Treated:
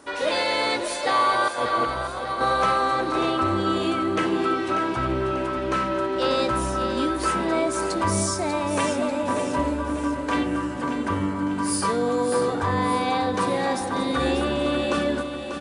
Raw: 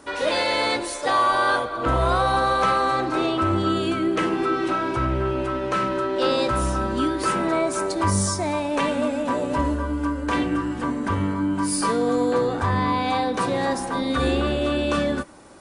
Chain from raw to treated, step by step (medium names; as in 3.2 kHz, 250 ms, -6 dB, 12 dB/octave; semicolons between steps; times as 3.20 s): bass shelf 100 Hz -7.5 dB; 1.48–2.41 s: compressor with a negative ratio -26 dBFS, ratio -0.5; on a send: feedback delay 591 ms, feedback 48%, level -8.5 dB; on the sum: trim -1 dB